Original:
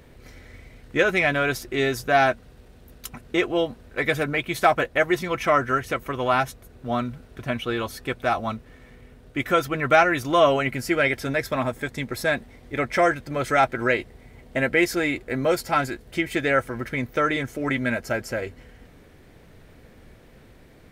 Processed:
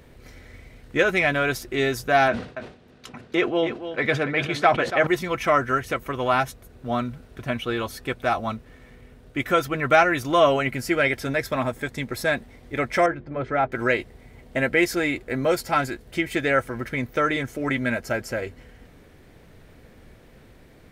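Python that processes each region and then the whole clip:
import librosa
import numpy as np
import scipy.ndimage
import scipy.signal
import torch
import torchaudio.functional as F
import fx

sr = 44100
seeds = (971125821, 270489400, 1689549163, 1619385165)

y = fx.chain(x, sr, fx.bandpass_edges(low_hz=130.0, high_hz=4600.0),
    fx.echo_single(ms=284, db=-10.5),
    fx.sustainer(db_per_s=120.0), at=(2.28, 5.07))
y = fx.chain(y, sr, fx.spacing_loss(db_at_10k=38),
    fx.hum_notches(base_hz=50, count=9), at=(13.06, 13.72))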